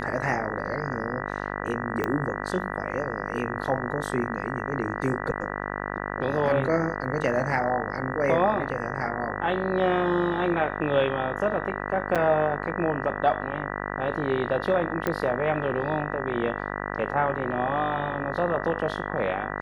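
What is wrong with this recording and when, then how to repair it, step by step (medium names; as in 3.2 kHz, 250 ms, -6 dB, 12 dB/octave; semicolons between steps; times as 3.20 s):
buzz 50 Hz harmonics 39 -32 dBFS
2.04 s: pop -13 dBFS
12.15–12.16 s: dropout 6.6 ms
15.07 s: pop -13 dBFS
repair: de-click; de-hum 50 Hz, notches 39; interpolate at 12.15 s, 6.6 ms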